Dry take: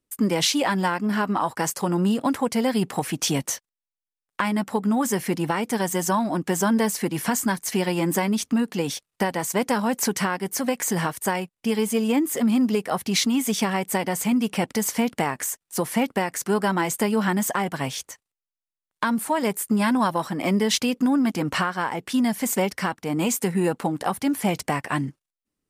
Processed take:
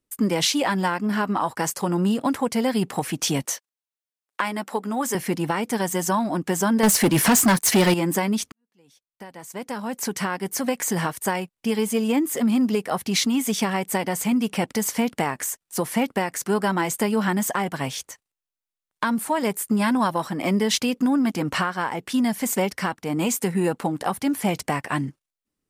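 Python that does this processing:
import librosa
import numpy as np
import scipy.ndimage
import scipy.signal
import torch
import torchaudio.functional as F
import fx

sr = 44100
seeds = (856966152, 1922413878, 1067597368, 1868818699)

y = fx.highpass(x, sr, hz=310.0, slope=12, at=(3.45, 5.15))
y = fx.leveller(y, sr, passes=3, at=(6.83, 7.94))
y = fx.edit(y, sr, fx.fade_in_span(start_s=8.52, length_s=1.94, curve='qua'), tone=tone)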